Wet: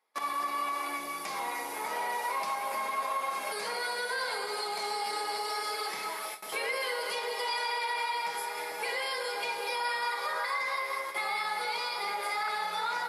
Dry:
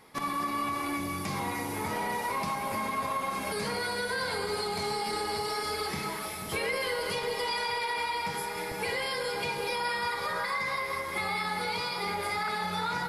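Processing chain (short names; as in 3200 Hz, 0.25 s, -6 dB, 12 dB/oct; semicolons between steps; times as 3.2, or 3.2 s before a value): gate with hold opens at -26 dBFS; Chebyshev high-pass 610 Hz, order 2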